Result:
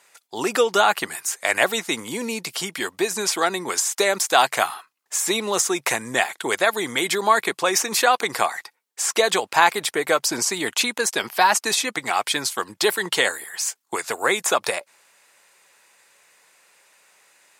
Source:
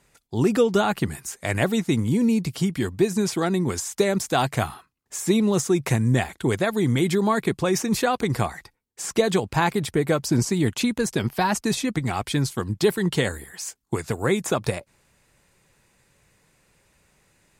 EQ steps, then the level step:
high-pass filter 700 Hz 12 dB per octave
+8.0 dB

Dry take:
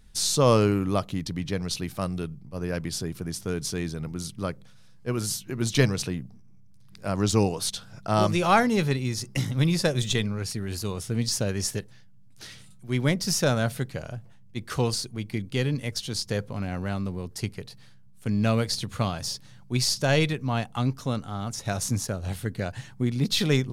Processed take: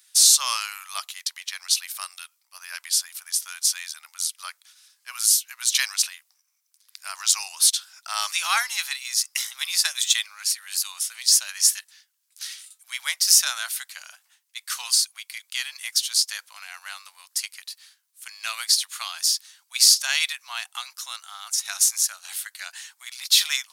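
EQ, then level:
Bessel high-pass filter 1,700 Hz, order 8
high-shelf EQ 4,700 Hz +12 dB
+4.0 dB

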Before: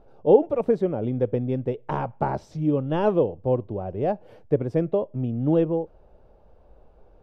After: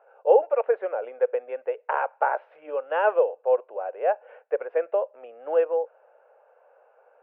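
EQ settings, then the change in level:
Chebyshev band-pass filter 490–2,700 Hz, order 4
parametric band 1,500 Hz +8.5 dB 0.39 octaves
+3.0 dB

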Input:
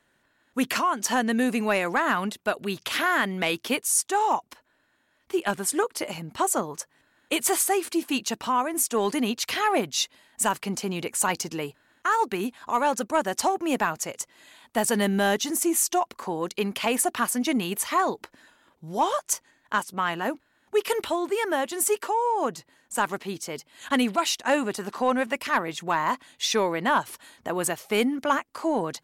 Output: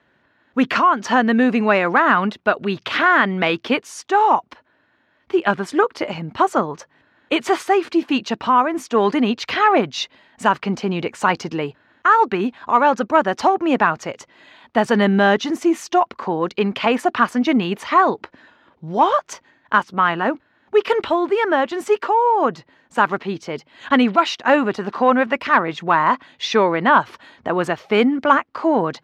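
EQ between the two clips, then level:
dynamic equaliser 1,300 Hz, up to +4 dB, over −38 dBFS, Q 2.3
high-pass filter 58 Hz
high-frequency loss of the air 230 metres
+8.5 dB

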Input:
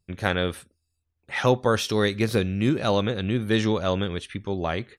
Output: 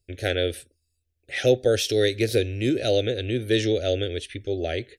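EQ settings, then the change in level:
Butterworth band-reject 1,000 Hz, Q 1.4
phaser with its sweep stopped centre 450 Hz, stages 4
+3.5 dB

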